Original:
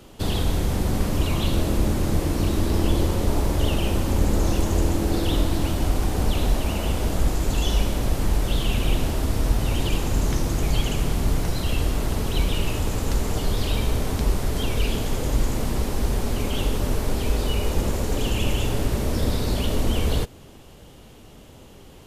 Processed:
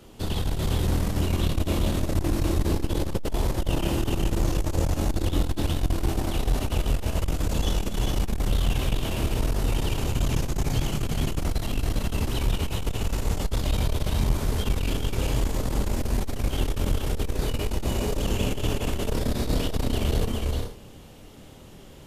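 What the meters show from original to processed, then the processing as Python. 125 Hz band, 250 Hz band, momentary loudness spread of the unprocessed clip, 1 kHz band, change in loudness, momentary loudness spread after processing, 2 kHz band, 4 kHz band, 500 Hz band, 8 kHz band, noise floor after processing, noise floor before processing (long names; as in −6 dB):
−2.0 dB, −3.0 dB, 3 LU, −3.5 dB, −3.0 dB, 3 LU, −3.0 dB, −3.0 dB, −3.0 dB, −3.5 dB, −45 dBFS, −46 dBFS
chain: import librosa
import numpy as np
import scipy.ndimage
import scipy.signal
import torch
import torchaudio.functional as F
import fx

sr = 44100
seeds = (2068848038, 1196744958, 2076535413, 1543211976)

p1 = fx.chorus_voices(x, sr, voices=2, hz=0.13, base_ms=26, depth_ms=1.6, mix_pct=35)
p2 = p1 + fx.echo_multitap(p1, sr, ms=(230, 248, 280, 408, 446, 478), db=(-17.0, -13.5, -10.0, -3.5, -19.0, -15.0), dry=0)
y = fx.transformer_sat(p2, sr, knee_hz=100.0)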